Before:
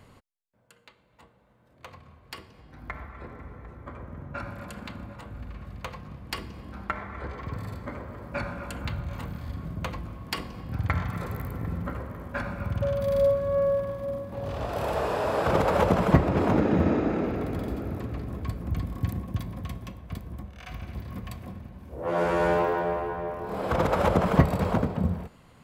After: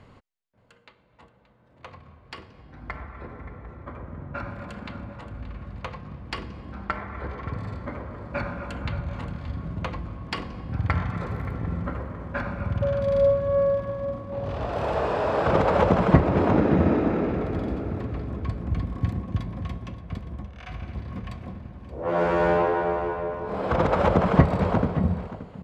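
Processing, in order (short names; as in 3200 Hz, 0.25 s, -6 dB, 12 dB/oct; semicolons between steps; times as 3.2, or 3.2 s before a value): LPF 7100 Hz 12 dB/oct; high shelf 5500 Hz -10 dB; on a send: echo 0.576 s -15 dB; on the sum: gain +2.5 dB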